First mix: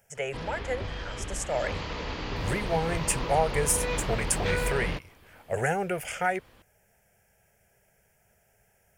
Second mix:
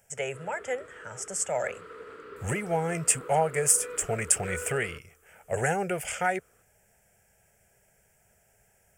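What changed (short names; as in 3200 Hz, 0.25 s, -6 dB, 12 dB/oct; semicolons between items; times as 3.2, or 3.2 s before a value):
background: add double band-pass 770 Hz, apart 1.6 oct; master: add bell 7900 Hz +8.5 dB 0.37 oct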